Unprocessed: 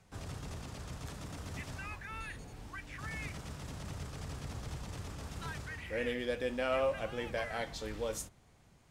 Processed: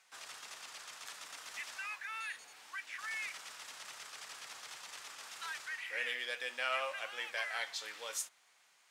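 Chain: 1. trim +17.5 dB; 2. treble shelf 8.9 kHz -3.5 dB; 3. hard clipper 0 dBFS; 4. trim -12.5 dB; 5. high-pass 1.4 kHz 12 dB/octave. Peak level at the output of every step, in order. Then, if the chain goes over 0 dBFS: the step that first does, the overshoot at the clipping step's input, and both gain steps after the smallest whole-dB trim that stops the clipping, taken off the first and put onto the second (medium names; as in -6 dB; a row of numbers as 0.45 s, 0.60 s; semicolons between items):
-4.0 dBFS, -4.0 dBFS, -4.0 dBFS, -16.5 dBFS, -21.0 dBFS; nothing clips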